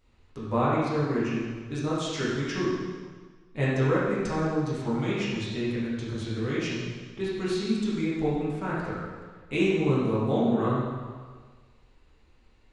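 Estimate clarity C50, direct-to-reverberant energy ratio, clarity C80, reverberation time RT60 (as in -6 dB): -2.0 dB, -9.0 dB, 1.0 dB, 1.5 s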